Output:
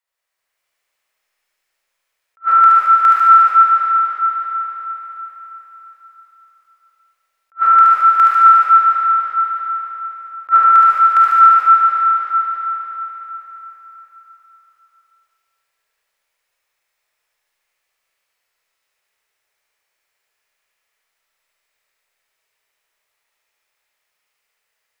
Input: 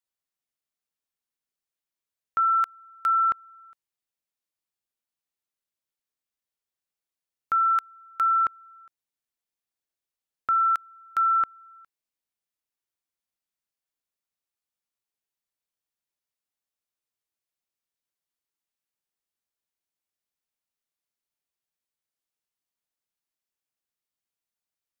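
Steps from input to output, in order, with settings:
downward compressor 3 to 1, threshold −26 dBFS, peak gain reduction 4.5 dB
octave-band graphic EQ 125/250/500/1,000/2,000 Hz −4/−11/+7/+5/+9 dB
convolution reverb RT60 4.4 s, pre-delay 10 ms, DRR −7.5 dB
automatic gain control gain up to 4 dB
delay with a high-pass on its return 73 ms, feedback 73%, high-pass 1,800 Hz, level −3 dB
level that may rise only so fast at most 500 dB per second
level +1.5 dB

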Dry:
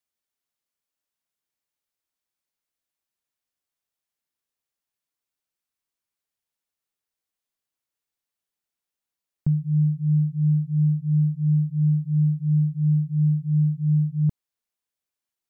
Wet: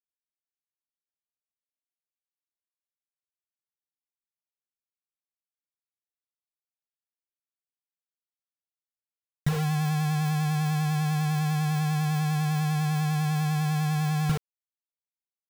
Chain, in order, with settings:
mains-hum notches 50/100/150/200/250/300/350/400/450 Hz
bit reduction 5 bits
pitch vibrato 10 Hz 39 cents

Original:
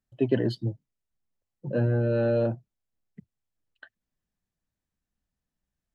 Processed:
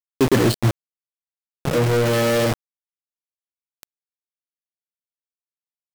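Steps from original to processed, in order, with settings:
single-tap delay 99 ms −23.5 dB
on a send at −20 dB: convolution reverb RT60 2.1 s, pre-delay 4 ms
on the sum: centre clipping without the shift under −31 dBFS
0:01.71–0:02.52: tuned comb filter 160 Hz, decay 0.47 s, harmonics all, mix 80%
power curve on the samples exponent 0.35
level +2.5 dB

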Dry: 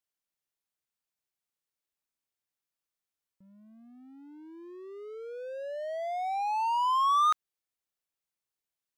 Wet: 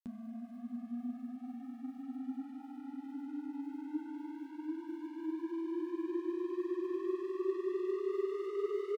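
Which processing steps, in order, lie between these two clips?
on a send: single-tap delay 247 ms −17 dB
on the sum: extreme stretch with random phases 7.1×, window 0.50 s, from 0:03.74
granular cloud, pitch spread up and down by 0 semitones
level +10 dB

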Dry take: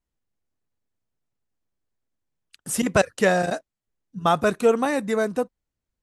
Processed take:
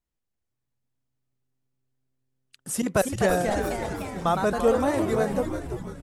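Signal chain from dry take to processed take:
delay with pitch and tempo change per echo 575 ms, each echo +2 semitones, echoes 3, each echo −6 dB
dynamic equaliser 2,600 Hz, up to −6 dB, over −36 dBFS, Q 0.81
echo with shifted repeats 338 ms, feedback 53%, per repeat −130 Hz, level −7.5 dB
level −3 dB

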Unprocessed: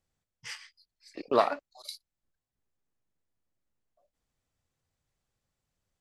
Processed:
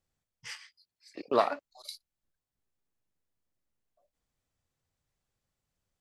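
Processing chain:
0:00.56–0:01.65: high-pass filter 85 Hz
level −1.5 dB

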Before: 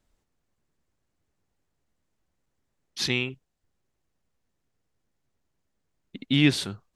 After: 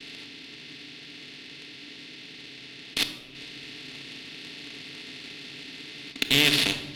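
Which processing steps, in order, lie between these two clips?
compressor on every frequency bin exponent 0.2
low-shelf EQ 360 Hz −11 dB
downward expander −30 dBFS
0:03.03–0:06.16: compressor whose output falls as the input rises −33 dBFS, ratio −1
low-pass with resonance 4,000 Hz, resonance Q 2
harmonic generator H 2 −14 dB, 4 −20 dB, 7 −19 dB, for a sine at −2.5 dBFS
convolution reverb RT60 1.2 s, pre-delay 4 ms, DRR 6 dB
level −2 dB

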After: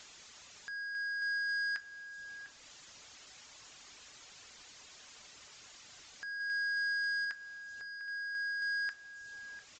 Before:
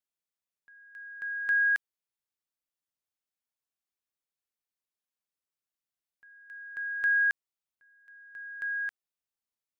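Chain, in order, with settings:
reverb reduction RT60 0.51 s
0:06.40–0:07.25: parametric band 1,800 Hz +10.5 dB 2.8 octaves
downward compressor, threshold −30 dBFS, peak gain reduction 15 dB
soft clipping −34 dBFS, distortion −11 dB
power curve on the samples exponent 0.35
slap from a distant wall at 120 metres, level −12 dB
on a send at −12 dB: convolution reverb RT60 0.40 s, pre-delay 3 ms
on the sum: downsampling to 16,000 Hz
one half of a high-frequency compander encoder only

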